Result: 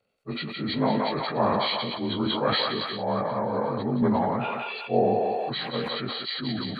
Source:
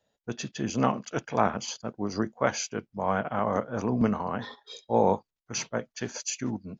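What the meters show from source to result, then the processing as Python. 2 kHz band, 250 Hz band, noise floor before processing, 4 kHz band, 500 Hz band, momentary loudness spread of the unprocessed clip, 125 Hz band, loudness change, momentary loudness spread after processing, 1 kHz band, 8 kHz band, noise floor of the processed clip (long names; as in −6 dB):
+3.0 dB, +2.5 dB, below −85 dBFS, +11.0 dB, +3.0 dB, 10 LU, +2.0 dB, +3.0 dB, 6 LU, +2.5 dB, can't be measured, −37 dBFS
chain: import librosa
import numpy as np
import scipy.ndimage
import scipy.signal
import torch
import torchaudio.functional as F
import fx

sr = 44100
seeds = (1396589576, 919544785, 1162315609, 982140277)

y = fx.partial_stretch(x, sr, pct=87)
y = fx.echo_thinned(y, sr, ms=180, feedback_pct=50, hz=860.0, wet_db=-5.0)
y = fx.sustainer(y, sr, db_per_s=21.0)
y = F.gain(torch.from_numpy(y), 1.5).numpy()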